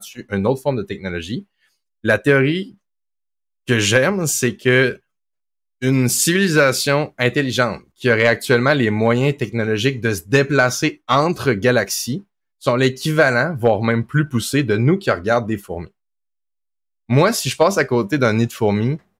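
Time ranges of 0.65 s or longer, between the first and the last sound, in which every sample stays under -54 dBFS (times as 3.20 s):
2.77–3.67 s
5.00–5.81 s
15.90–17.08 s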